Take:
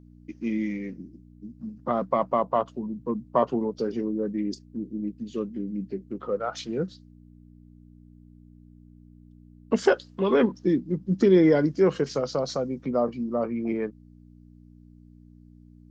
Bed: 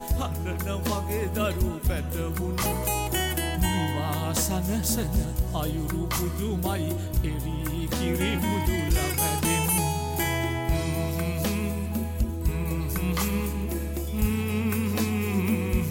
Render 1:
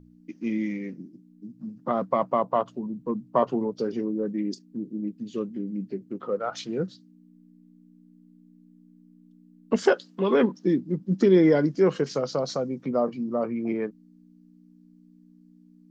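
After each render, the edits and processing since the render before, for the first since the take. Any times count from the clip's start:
hum removal 60 Hz, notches 2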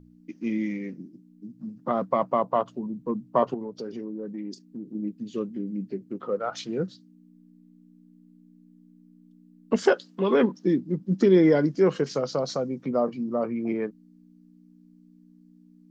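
0:03.54–0:04.95: downward compressor 2 to 1, threshold −36 dBFS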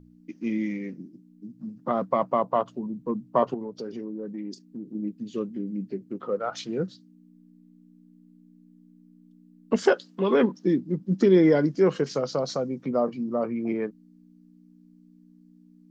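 no processing that can be heard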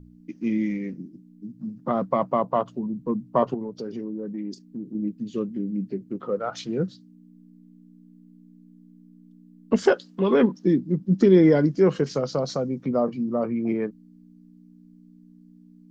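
low-shelf EQ 200 Hz +8 dB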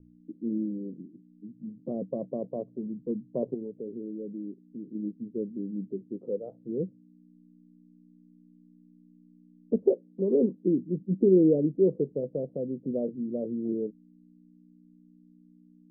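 Butterworth low-pass 510 Hz 36 dB per octave
low-shelf EQ 240 Hz −12 dB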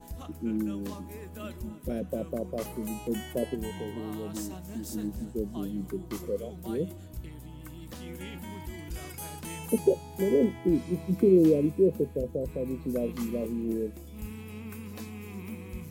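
mix in bed −15 dB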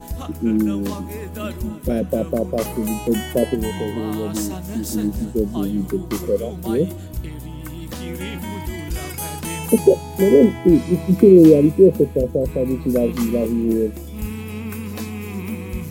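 level +12 dB
brickwall limiter −1 dBFS, peak gain reduction 2 dB

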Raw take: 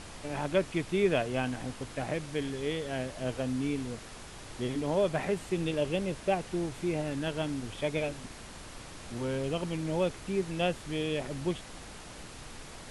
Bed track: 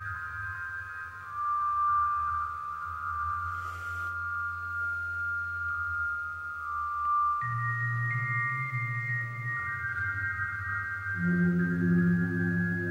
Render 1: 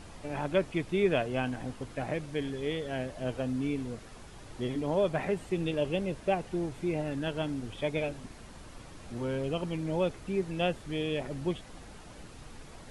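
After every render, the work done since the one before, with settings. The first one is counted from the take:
broadband denoise 7 dB, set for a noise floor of −46 dBFS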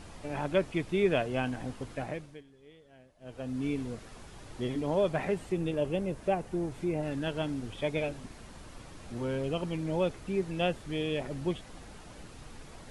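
0:01.93–0:03.69: duck −22.5 dB, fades 0.50 s
0:05.38–0:07.03: dynamic equaliser 3,500 Hz, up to −6 dB, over −52 dBFS, Q 0.75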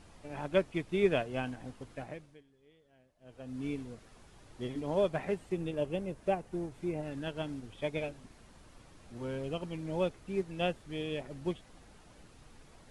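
expander for the loud parts 1.5 to 1, over −39 dBFS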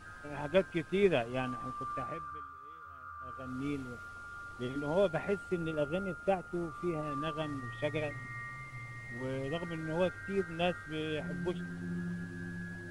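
mix in bed track −13.5 dB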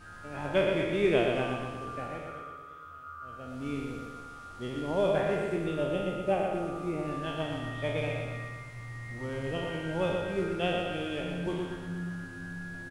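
peak hold with a decay on every bin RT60 0.83 s
repeating echo 119 ms, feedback 56%, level −5 dB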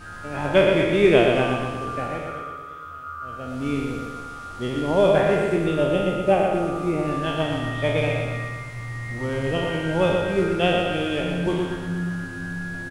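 level +9.5 dB

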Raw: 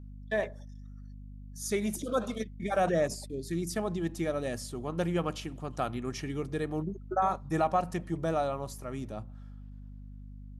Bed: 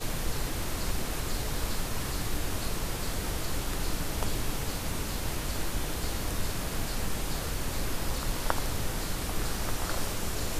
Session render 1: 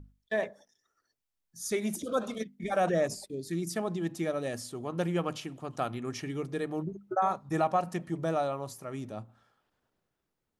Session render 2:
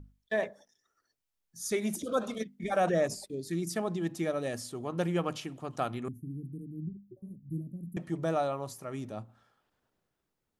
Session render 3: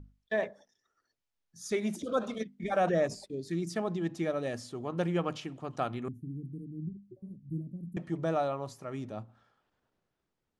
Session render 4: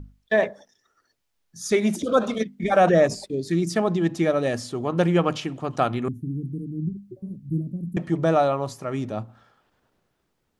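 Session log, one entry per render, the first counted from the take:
mains-hum notches 50/100/150/200/250 Hz
0:06.08–0:07.97: inverse Chebyshev band-stop filter 760–5,200 Hz, stop band 60 dB
high-frequency loss of the air 67 metres
level +10.5 dB

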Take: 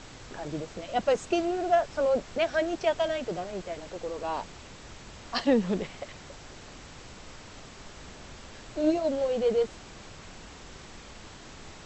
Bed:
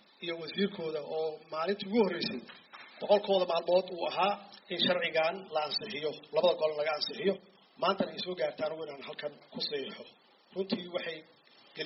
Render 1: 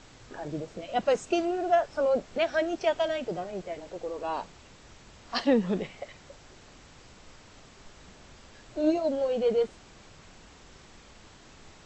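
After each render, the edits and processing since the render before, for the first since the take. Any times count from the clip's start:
noise reduction from a noise print 6 dB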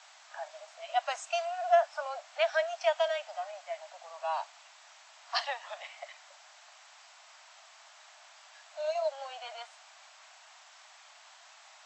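Butterworth high-pass 620 Hz 96 dB per octave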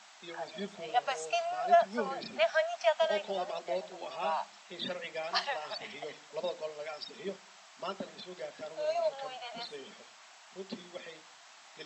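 mix in bed −9.5 dB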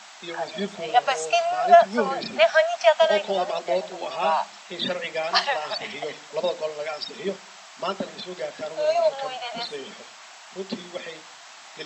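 level +10.5 dB

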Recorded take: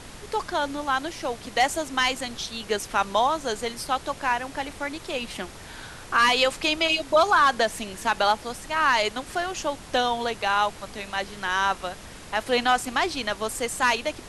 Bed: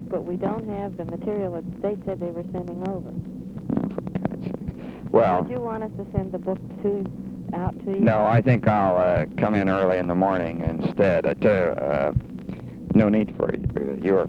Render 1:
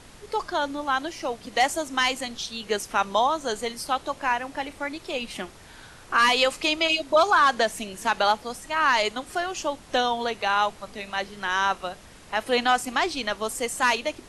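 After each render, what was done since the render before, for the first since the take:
noise reduction from a noise print 6 dB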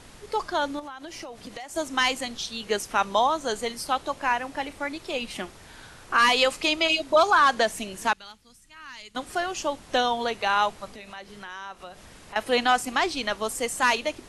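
0:00.79–0:01.76: downward compressor 16 to 1, threshold −34 dBFS
0:08.13–0:09.15: guitar amp tone stack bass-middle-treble 6-0-2
0:10.87–0:12.36: downward compressor 2.5 to 1, threshold −41 dBFS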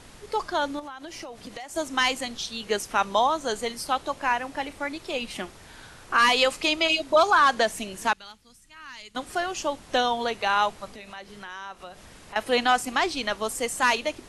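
no processing that can be heard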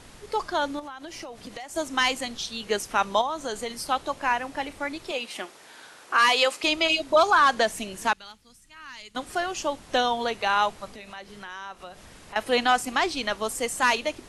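0:03.21–0:03.82: downward compressor 2.5 to 1, threshold −27 dBFS
0:05.11–0:06.64: high-pass filter 340 Hz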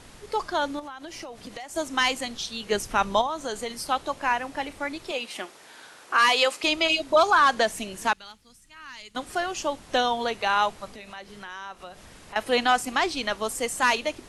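0:02.72–0:03.27: low-shelf EQ 160 Hz +11 dB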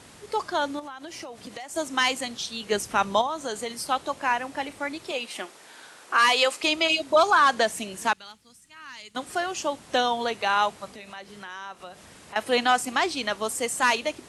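high-pass filter 89 Hz 12 dB per octave
parametric band 8,300 Hz +3 dB 0.44 octaves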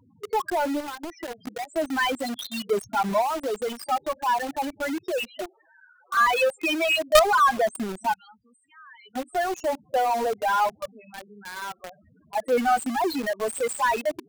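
spectral peaks only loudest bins 4
in parallel at −5 dB: log-companded quantiser 2 bits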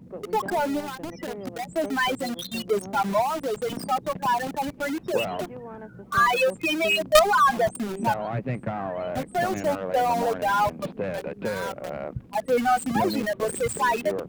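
mix in bed −11 dB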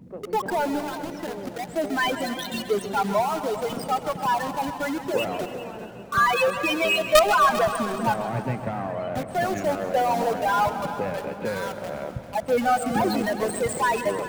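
echo machine with several playback heads 132 ms, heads all three, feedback 45%, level −17 dB
feedback echo with a swinging delay time 152 ms, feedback 69%, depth 168 cents, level −15.5 dB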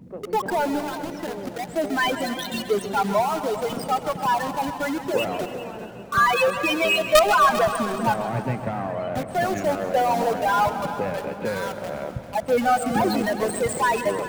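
level +1.5 dB
brickwall limiter −1 dBFS, peak gain reduction 1.5 dB

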